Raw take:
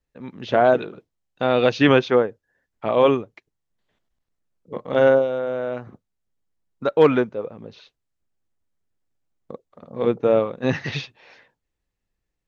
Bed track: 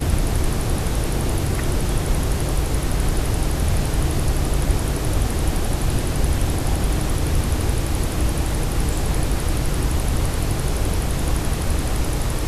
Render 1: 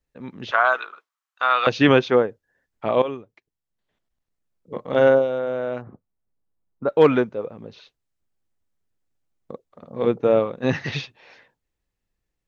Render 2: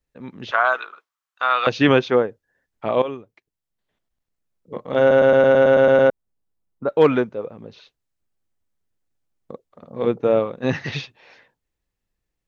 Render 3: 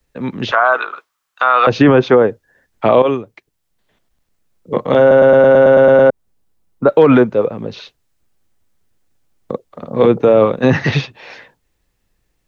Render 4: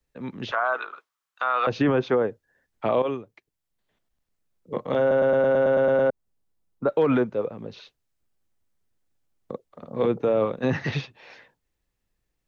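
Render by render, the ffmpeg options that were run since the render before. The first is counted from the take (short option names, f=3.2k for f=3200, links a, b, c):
-filter_complex "[0:a]asettb=1/sr,asplit=3[a][b][c];[a]atrim=end=0.514[d];[b]atrim=start=0.51:end=1.67,asetpts=PTS-STARTPTS,afade=t=in:d=0.004:c=qsin,afade=t=out:st=1.156:d=0.004:c=qsin,highpass=f=1.2k:t=q:w=4.2[e];[c]atrim=start=1.666[f];[d][e]acrossfade=d=0.004:c1=hsin:c2=qsin[g];[g][f]acrossfade=d=0.004:c1=qsin:c2=hsin,asplit=3[h][i][j];[h]afade=t=out:st=5.81:d=0.02[k];[i]lowpass=1.3k,afade=t=in:st=5.81:d=0.02,afade=t=out:st=6.88:d=0.02[l];[j]afade=t=in:st=6.88:d=0.02[m];[k][l][m]amix=inputs=3:normalize=0,asplit=2[n][o];[n]atrim=end=3.02,asetpts=PTS-STARTPTS,afade=t=out:st=3.016:d=0.004:c=hsin:silence=0.211349[p];[o]atrim=start=3.02,asetpts=PTS-STARTPTS,afade=t=in:d=1.8:silence=0.211349[q];[p][q]concat=n=2:v=0:a=1"
-filter_complex "[0:a]asplit=11[a][b][c][d][e][f][g][h][i][j][k];[a]atrim=end=5.112[l];[b]atrim=start=4.998:end=5.112[m];[c]atrim=start=4.998:end=5.112[n];[d]atrim=start=4.998:end=5.112[o];[e]atrim=start=4.998:end=5.112[p];[f]atrim=start=4.998:end=5.112[q];[g]atrim=start=4.998:end=5.112[r];[h]atrim=start=4.998:end=5.112[s];[i]atrim=start=4.998:end=5.112[t];[j]atrim=start=4.998:end=5.112[u];[k]atrim=start=6.098[v];[l][m]acrossfade=d=0.004:c1=hsin:c2=hsin[w];[w][n]acrossfade=d=0.004:c1=hsin:c2=hsin[x];[x][o]acrossfade=d=0.004:c1=hsin:c2=hsin[y];[y][p]acrossfade=d=0.004:c1=hsin:c2=hsin[z];[z][q]acrossfade=d=0.004:c1=hsin:c2=hsin[aa];[aa][r]acrossfade=d=0.004:c1=hsin:c2=hsin[ab];[ab][s]acrossfade=d=0.004:c1=hsin:c2=hsin[ac];[ac][t]acrossfade=d=0.004:c1=hsin:c2=hsin[ad];[ad][u]acrossfade=d=0.004:c1=hsin:c2=hsin[ae];[ae][v]acrossfade=d=0.004:c1=hsin:c2=hsin"
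-filter_complex "[0:a]acrossover=split=150|550|1700[a][b][c][d];[d]acompressor=threshold=-38dB:ratio=6[e];[a][b][c][e]amix=inputs=4:normalize=0,alimiter=level_in=14dB:limit=-1dB:release=50:level=0:latency=1"
-af "volume=-12dB"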